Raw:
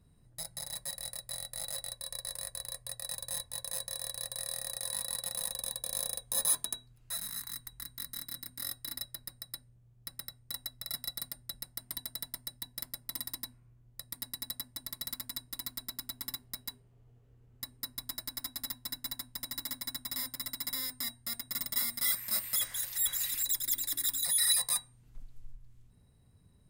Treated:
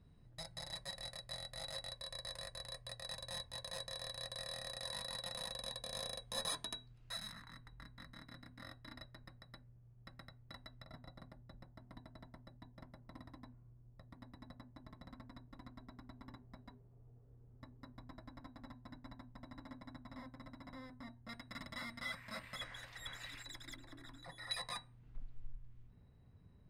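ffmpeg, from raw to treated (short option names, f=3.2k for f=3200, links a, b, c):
-af "asetnsamples=n=441:p=0,asendcmd='7.32 lowpass f 1800;10.84 lowpass f 1000;21.29 lowpass f 2100;23.76 lowpass f 1100;24.51 lowpass f 2600',lowpass=4.3k"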